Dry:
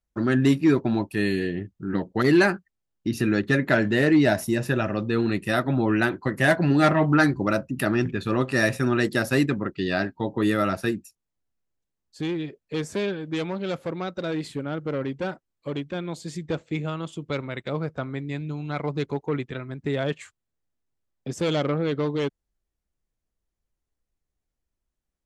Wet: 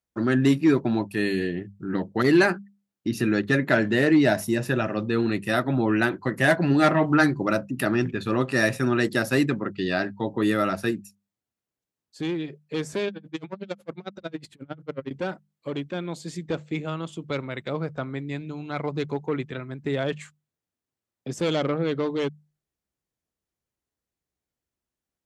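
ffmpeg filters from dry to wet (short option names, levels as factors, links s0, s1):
-filter_complex "[0:a]asettb=1/sr,asplit=3[s0][s1][s2];[s0]atrim=end=13.084[s3];[s1]atrim=start=13.08:end=15.11,asetpts=PTS-STARTPTS,afade=t=in:d=0.004:c=qsin,afade=t=out:st=2.026:d=0.004:c=qsin,aeval=exprs='val(0)*pow(10,-39*(0.5-0.5*cos(2*PI*11*n/s))/20)':c=same[s4];[s2]atrim=start=15.106[s5];[s3][s4]acrossfade=d=0.004:c1=hsin:c2=qsin[s6];[s6][s5]acrossfade=d=0.004:c1=qsin:c2=hsin,highpass=91,bandreject=f=50:t=h:w=6,bandreject=f=100:t=h:w=6,bandreject=f=150:t=h:w=6,bandreject=f=200:t=h:w=6"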